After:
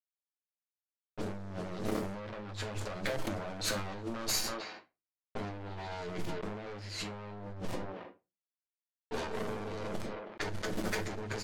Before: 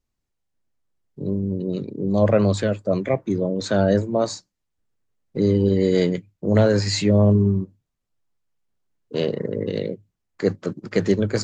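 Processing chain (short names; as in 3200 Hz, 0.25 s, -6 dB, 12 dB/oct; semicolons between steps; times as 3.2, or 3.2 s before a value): minimum comb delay 9.4 ms; bit-crush 8-bit; limiter -14.5 dBFS, peak gain reduction 9.5 dB; hard clip -28.5 dBFS, distortion -5 dB; negative-ratio compressor -35 dBFS, ratio -0.5; low shelf 320 Hz -7 dB; speakerphone echo 0.32 s, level -25 dB; reverb RT60 0.25 s, pre-delay 7 ms, DRR 7.5 dB; low-pass opened by the level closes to 2100 Hz, open at -31 dBFS; sustainer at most 44 dB/s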